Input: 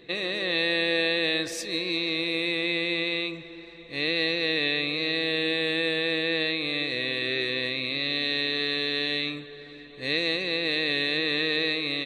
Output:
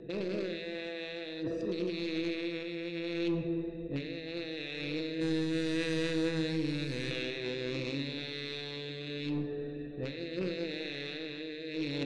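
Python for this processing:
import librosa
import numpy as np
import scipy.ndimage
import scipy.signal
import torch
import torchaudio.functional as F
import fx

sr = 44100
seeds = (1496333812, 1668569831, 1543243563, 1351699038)

y = fx.wiener(x, sr, points=41)
y = fx.curve_eq(y, sr, hz=(140.0, 1100.0, 1700.0, 3200.0, 7800.0), db=(0, -17, -6, -13, 7), at=(5.2, 7.11))
y = fx.over_compress(y, sr, threshold_db=-38.0, ratio=-1.0)
y = fx.rotary(y, sr, hz=0.8)
y = 10.0 ** (-30.0 / 20.0) * np.tanh(y / 10.0 ** (-30.0 / 20.0))
y = fx.air_absorb(y, sr, metres=89.0)
y = fx.room_shoebox(y, sr, seeds[0], volume_m3=790.0, walls='mixed', distance_m=0.69)
y = y * 10.0 ** (4.0 / 20.0)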